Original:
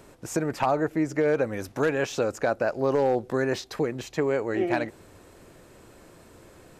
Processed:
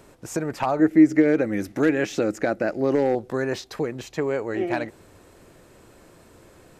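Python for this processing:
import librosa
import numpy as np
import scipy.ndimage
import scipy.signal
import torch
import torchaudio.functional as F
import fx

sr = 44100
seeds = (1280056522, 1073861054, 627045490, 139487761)

y = fx.graphic_eq_31(x, sr, hz=(200, 315, 1000, 2000), db=(9, 12, -7, 8), at=(0.79, 3.15))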